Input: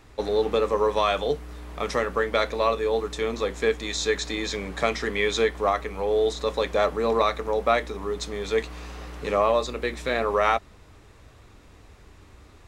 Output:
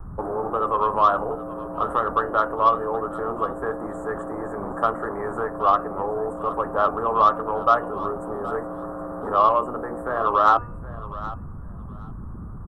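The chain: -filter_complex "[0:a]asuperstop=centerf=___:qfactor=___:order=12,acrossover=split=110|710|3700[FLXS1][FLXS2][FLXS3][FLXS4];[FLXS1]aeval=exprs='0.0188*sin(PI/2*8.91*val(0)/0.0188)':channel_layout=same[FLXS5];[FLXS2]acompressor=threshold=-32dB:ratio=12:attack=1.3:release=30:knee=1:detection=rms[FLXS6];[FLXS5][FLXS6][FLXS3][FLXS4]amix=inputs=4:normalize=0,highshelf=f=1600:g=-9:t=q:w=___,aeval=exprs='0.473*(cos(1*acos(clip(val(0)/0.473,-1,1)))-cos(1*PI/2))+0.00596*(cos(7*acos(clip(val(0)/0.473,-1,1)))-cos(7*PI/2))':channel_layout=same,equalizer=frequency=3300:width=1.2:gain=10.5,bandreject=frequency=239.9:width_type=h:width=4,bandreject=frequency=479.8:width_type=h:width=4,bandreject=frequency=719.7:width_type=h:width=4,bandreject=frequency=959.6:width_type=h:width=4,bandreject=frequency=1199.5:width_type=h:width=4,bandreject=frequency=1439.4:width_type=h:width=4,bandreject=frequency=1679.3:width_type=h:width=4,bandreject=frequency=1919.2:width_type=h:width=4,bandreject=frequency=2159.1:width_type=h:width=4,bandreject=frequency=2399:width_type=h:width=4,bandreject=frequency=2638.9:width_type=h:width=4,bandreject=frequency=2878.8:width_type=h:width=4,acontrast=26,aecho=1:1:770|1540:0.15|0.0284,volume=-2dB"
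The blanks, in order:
4000, 0.58, 3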